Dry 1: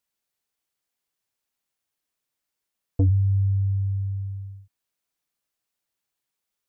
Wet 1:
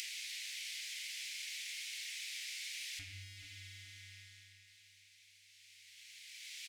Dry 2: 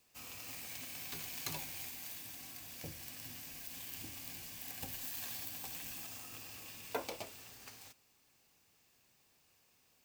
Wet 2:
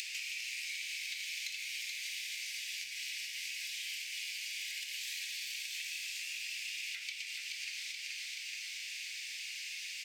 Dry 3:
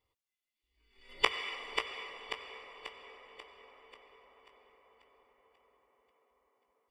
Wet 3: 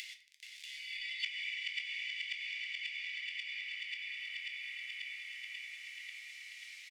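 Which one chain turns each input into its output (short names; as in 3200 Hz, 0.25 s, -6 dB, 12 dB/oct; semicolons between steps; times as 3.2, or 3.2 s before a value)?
G.711 law mismatch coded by mu; high shelf 6400 Hz +5.5 dB; soft clip -15.5 dBFS; tape spacing loss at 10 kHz 23 dB; on a send: feedback echo 0.428 s, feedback 42%, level -8.5 dB; on the sum: upward compressor, threshold -40 dBFS; elliptic high-pass 2100 Hz, stop band 50 dB; shoebox room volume 110 m³, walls mixed, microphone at 0.4 m; compressor 4:1, threshold -57 dBFS; gain +17.5 dB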